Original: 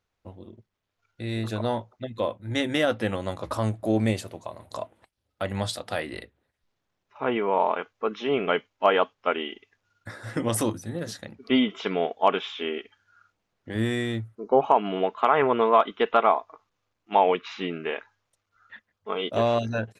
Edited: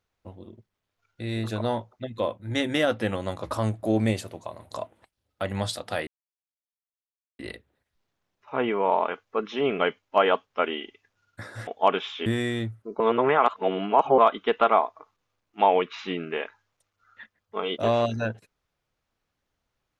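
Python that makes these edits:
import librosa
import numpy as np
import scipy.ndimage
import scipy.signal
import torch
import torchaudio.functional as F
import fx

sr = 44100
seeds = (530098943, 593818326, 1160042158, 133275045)

y = fx.edit(x, sr, fx.insert_silence(at_s=6.07, length_s=1.32),
    fx.cut(start_s=10.35, length_s=1.72),
    fx.cut(start_s=12.66, length_s=1.13),
    fx.reverse_span(start_s=14.53, length_s=1.18), tone=tone)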